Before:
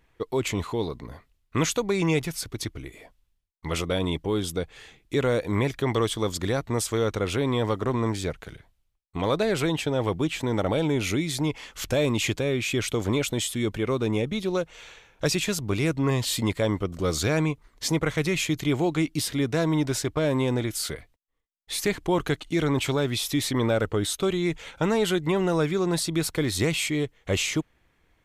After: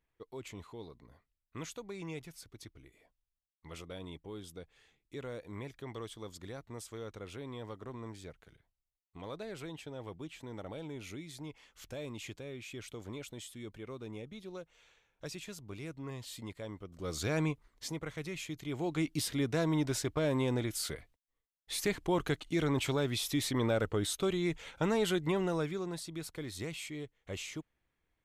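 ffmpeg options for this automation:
-af "volume=1.19,afade=t=in:st=16.89:d=0.58:silence=0.251189,afade=t=out:st=17.47:d=0.47:silence=0.375837,afade=t=in:st=18.67:d=0.42:silence=0.375837,afade=t=out:st=25.27:d=0.71:silence=0.354813"

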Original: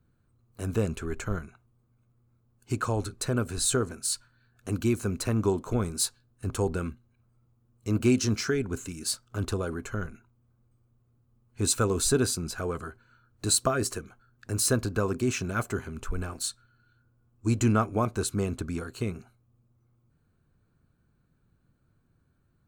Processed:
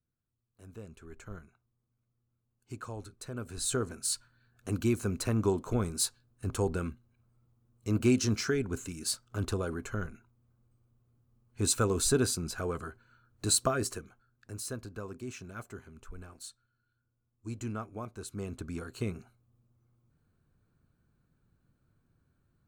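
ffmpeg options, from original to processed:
-af "volume=2.66,afade=t=in:st=0.84:d=0.54:silence=0.473151,afade=t=in:st=3.33:d=0.69:silence=0.298538,afade=t=out:st=13.61:d=1.03:silence=0.266073,afade=t=in:st=18.21:d=0.85:silence=0.281838"

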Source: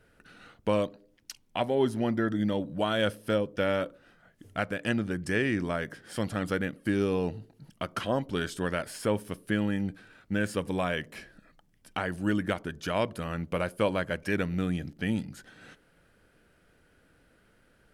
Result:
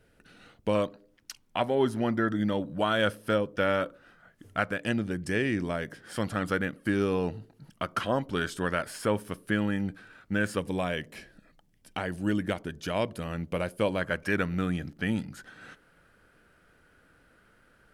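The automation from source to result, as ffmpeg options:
-af "asetnsamples=n=441:p=0,asendcmd='0.75 equalizer g 5;4.79 equalizer g -2.5;6.01 equalizer g 4.5;10.59 equalizer g -3.5;14.01 equalizer g 6',equalizer=f=1300:t=o:w=0.98:g=-4.5"

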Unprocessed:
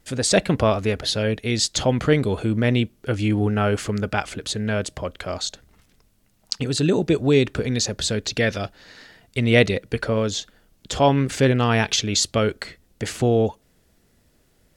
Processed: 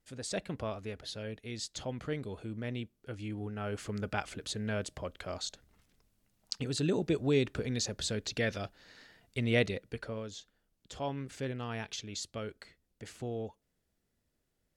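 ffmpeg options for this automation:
-af "volume=0.282,afade=t=in:st=3.57:d=0.54:silence=0.421697,afade=t=out:st=9.39:d=0.87:silence=0.375837"

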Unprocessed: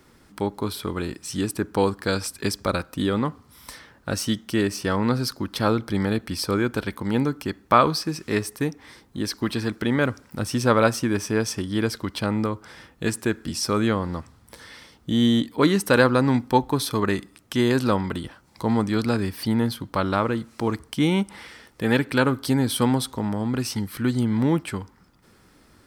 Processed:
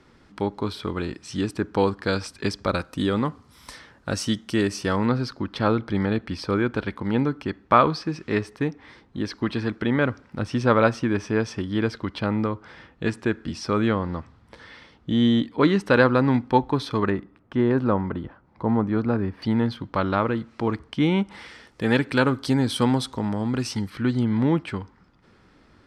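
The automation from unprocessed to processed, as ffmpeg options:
-af "asetnsamples=n=441:p=0,asendcmd='2.75 lowpass f 8000;5.06 lowpass f 3400;17.1 lowpass f 1400;19.42 lowpass f 3400;21.31 lowpass f 6900;23.9 lowpass f 4000',lowpass=4800"

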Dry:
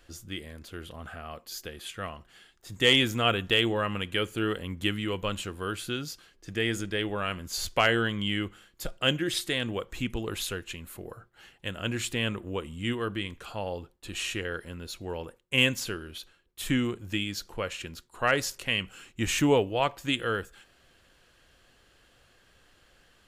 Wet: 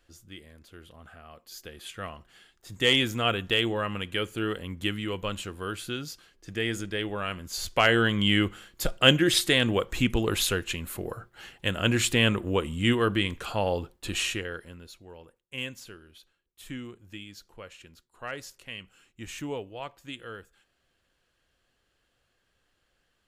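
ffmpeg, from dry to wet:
-af "volume=2.24,afade=t=in:st=1.34:d=0.62:silence=0.446684,afade=t=in:st=7.66:d=0.7:silence=0.398107,afade=t=out:st=14.07:d=0.37:silence=0.375837,afade=t=out:st=14.44:d=0.6:silence=0.298538"

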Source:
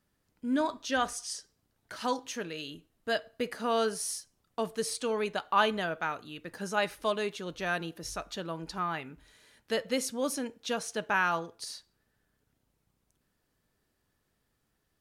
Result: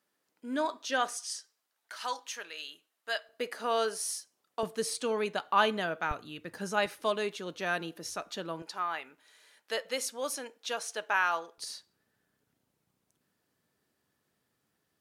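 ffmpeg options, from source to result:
-af "asetnsamples=n=441:p=0,asendcmd='1.17 highpass f 860;3.29 highpass f 380;4.63 highpass f 150;6.11 highpass f 63;6.86 highpass f 190;8.62 highpass f 540;11.58 highpass f 130',highpass=360"

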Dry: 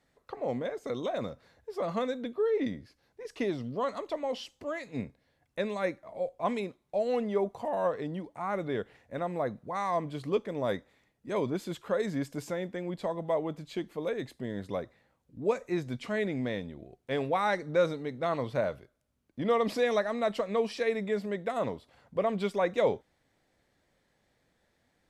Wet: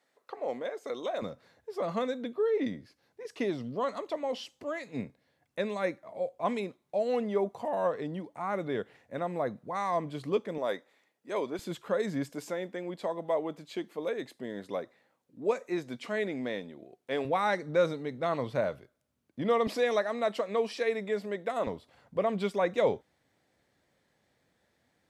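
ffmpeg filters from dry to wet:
-af "asetnsamples=n=441:p=0,asendcmd='1.22 highpass f 120;10.58 highpass f 360;11.59 highpass f 110;12.29 highpass f 240;17.25 highpass f 93;19.67 highpass f 240;21.67 highpass f 74',highpass=370"

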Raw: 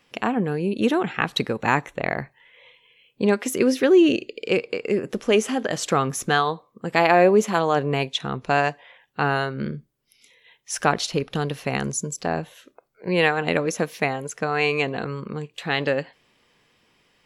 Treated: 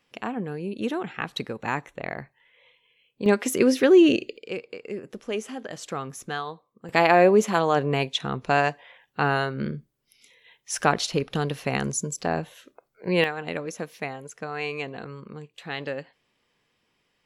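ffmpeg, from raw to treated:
-af "asetnsamples=n=441:p=0,asendcmd='3.26 volume volume 0dB;4.37 volume volume -11dB;6.89 volume volume -1dB;13.24 volume volume -9dB',volume=0.422"

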